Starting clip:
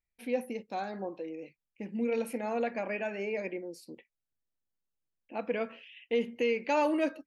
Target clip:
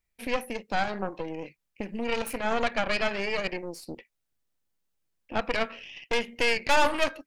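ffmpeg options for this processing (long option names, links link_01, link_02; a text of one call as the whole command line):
ffmpeg -i in.wav -filter_complex "[0:a]acrossover=split=690[link_01][link_02];[link_01]acompressor=threshold=-43dB:ratio=6[link_03];[link_03][link_02]amix=inputs=2:normalize=0,aeval=exprs='0.0841*(cos(1*acos(clip(val(0)/0.0841,-1,1)))-cos(1*PI/2))+0.0237*(cos(4*acos(clip(val(0)/0.0841,-1,1)))-cos(4*PI/2))+0.00596*(cos(8*acos(clip(val(0)/0.0841,-1,1)))-cos(8*PI/2))':channel_layout=same,volume=8dB" out.wav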